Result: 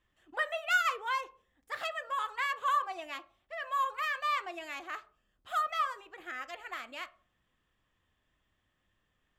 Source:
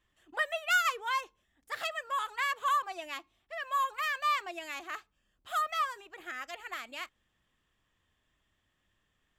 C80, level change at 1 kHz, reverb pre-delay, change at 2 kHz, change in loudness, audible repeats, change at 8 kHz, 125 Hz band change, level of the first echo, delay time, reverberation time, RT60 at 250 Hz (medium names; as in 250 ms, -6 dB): 23.5 dB, -0.5 dB, 4 ms, -1.0 dB, -1.0 dB, no echo, -5.5 dB, no reading, no echo, no echo, 0.45 s, 0.65 s